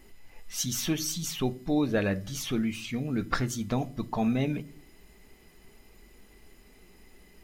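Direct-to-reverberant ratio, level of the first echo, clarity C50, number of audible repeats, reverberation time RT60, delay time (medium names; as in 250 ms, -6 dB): 12.0 dB, no echo, 22.0 dB, no echo, 0.40 s, no echo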